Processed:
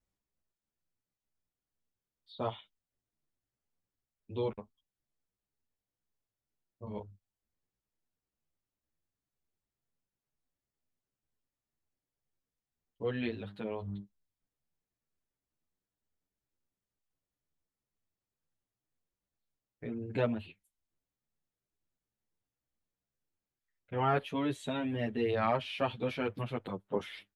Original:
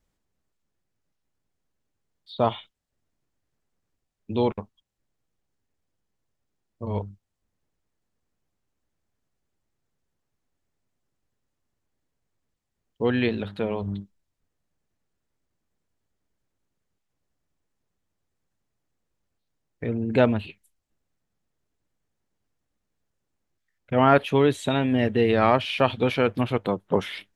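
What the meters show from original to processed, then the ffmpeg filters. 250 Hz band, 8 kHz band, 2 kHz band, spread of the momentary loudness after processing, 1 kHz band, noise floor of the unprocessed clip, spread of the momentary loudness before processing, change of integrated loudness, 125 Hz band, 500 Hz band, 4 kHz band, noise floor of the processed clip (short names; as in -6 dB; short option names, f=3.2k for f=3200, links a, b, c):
-12.0 dB, n/a, -11.5 dB, 15 LU, -11.0 dB, -80 dBFS, 15 LU, -11.5 dB, -11.0 dB, -12.0 dB, -11.5 dB, under -85 dBFS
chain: -filter_complex "[0:a]asplit=2[a][b];[b]adelay=8.9,afreqshift=2.1[c];[a][c]amix=inputs=2:normalize=1,volume=-8.5dB"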